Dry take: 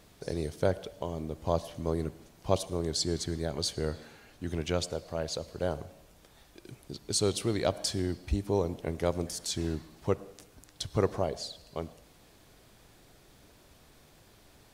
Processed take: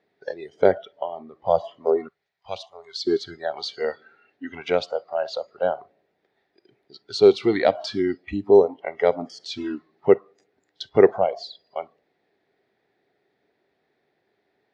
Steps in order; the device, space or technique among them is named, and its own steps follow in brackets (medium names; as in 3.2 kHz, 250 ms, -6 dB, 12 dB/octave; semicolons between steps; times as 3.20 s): spectral noise reduction 21 dB; 2.08–3.07 s: amplifier tone stack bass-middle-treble 10-0-10; kitchen radio (cabinet simulation 200–4000 Hz, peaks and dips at 400 Hz +10 dB, 750 Hz +6 dB, 1.1 kHz -6 dB, 1.9 kHz +9 dB, 3 kHz -6 dB); trim +8 dB